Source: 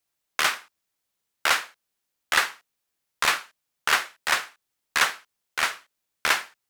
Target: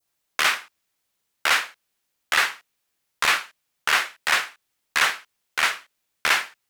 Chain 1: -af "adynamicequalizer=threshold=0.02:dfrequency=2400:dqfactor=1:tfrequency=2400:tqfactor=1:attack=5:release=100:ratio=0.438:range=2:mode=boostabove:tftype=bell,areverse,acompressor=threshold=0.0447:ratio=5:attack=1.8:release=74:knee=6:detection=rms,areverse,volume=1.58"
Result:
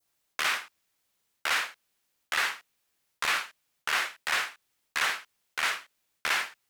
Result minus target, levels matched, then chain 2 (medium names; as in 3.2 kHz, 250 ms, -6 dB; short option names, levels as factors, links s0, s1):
compression: peak gain reduction +8.5 dB
-af "adynamicequalizer=threshold=0.02:dfrequency=2400:dqfactor=1:tfrequency=2400:tqfactor=1:attack=5:release=100:ratio=0.438:range=2:mode=boostabove:tftype=bell,areverse,acompressor=threshold=0.15:ratio=5:attack=1.8:release=74:knee=6:detection=rms,areverse,volume=1.58"